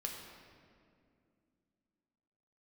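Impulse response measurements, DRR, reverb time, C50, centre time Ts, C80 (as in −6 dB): 0.0 dB, 2.4 s, 3.0 dB, 68 ms, 4.5 dB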